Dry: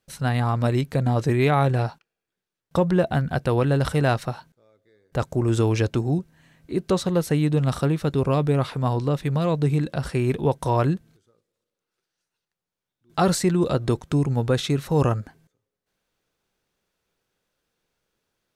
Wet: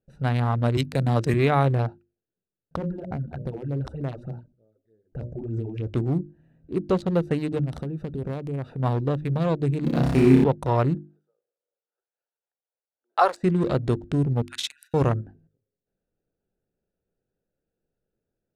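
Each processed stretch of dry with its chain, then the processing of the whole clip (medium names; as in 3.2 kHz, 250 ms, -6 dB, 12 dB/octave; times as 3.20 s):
0.77–1.34 s: treble shelf 2.1 kHz +12 dB + three bands expanded up and down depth 40%
2.76–5.87 s: hum notches 60/120/180/240/300/360/420/480/540/600 Hz + compression 8:1, threshold -23 dBFS + phase shifter stages 6, 3.3 Hz, lowest notch 120–3500 Hz
7.60–8.80 s: compression 5:1, threshold -25 dBFS + treble shelf 5.8 kHz +9 dB
9.84–10.44 s: jump at every zero crossing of -35 dBFS + peaking EQ 250 Hz +13.5 dB 0.37 oct + flutter echo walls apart 5.2 m, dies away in 1 s
10.95–13.43 s: high-pass 480 Hz 24 dB/octave + peaking EQ 1 kHz +8.5 dB 1.2 oct + tremolo 3.9 Hz, depth 53%
14.42–14.94 s: de-esser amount 30% + brick-wall FIR high-pass 1.4 kHz + treble shelf 4.5 kHz +10.5 dB
whole clip: local Wiener filter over 41 samples; treble shelf 6.8 kHz -7.5 dB; hum notches 50/100/150/200/250/300/350 Hz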